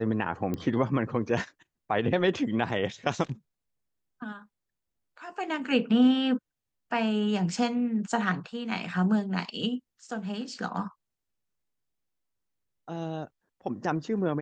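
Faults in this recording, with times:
0.54 pop -19 dBFS

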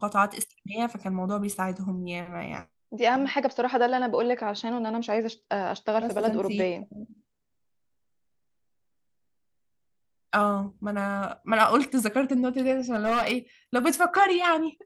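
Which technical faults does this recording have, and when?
12.94–13.33 clipped -20.5 dBFS

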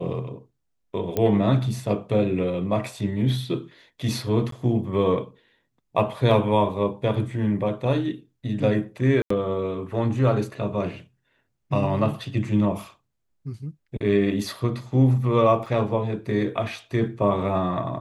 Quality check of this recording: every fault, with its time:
1.17 pop -11 dBFS
4.51–4.52 gap 13 ms
6.31 gap 2.2 ms
9.22–9.3 gap 84 ms
15.66 gap 3.4 ms

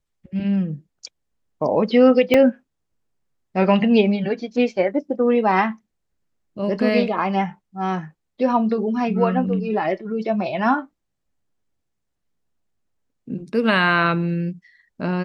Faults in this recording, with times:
2.34 gap 3.2 ms

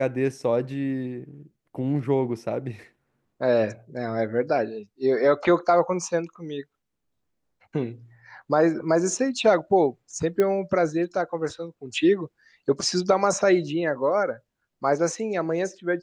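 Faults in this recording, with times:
10.4 pop -12 dBFS

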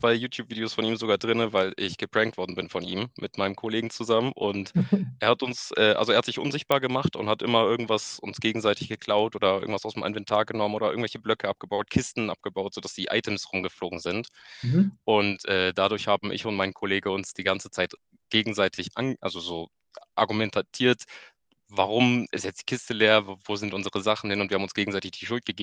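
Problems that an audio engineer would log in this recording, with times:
6.72 pop -9 dBFS

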